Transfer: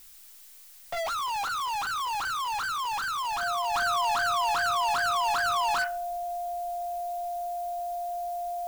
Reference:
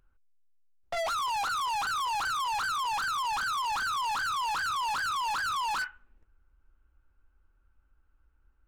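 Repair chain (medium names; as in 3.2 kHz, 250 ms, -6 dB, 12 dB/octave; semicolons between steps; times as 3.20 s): band-stop 700 Hz, Q 30; noise print and reduce 16 dB; trim 0 dB, from 3.74 s -3.5 dB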